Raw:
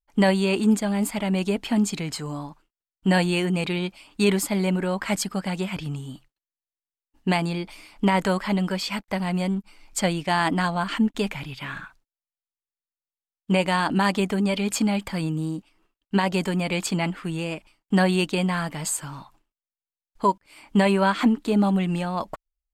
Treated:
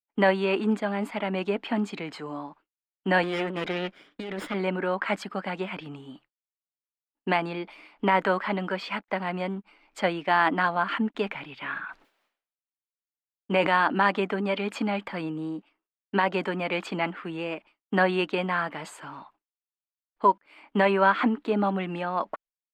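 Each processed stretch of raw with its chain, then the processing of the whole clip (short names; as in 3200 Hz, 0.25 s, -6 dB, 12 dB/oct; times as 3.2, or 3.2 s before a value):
3.23–4.54 minimum comb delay 0.56 ms + negative-ratio compressor -26 dBFS
11.79–13.86 high shelf 8700 Hz +2.5 dB + sustainer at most 40 dB/s
whole clip: dynamic EQ 1400 Hz, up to +4 dB, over -40 dBFS, Q 2; expander -46 dBFS; three-band isolator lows -22 dB, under 230 Hz, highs -23 dB, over 3300 Hz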